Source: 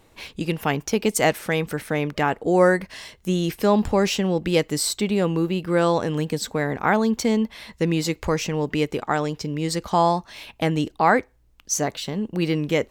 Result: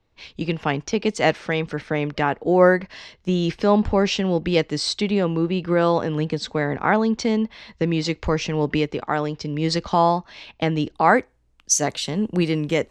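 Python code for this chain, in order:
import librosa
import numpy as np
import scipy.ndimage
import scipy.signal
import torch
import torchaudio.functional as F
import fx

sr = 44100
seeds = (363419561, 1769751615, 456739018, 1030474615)

y = fx.recorder_agc(x, sr, target_db=-10.5, rise_db_per_s=8.1, max_gain_db=30)
y = fx.lowpass(y, sr, hz=fx.steps((0.0, 5600.0), (10.94, 10000.0)), slope=24)
y = fx.band_widen(y, sr, depth_pct=40)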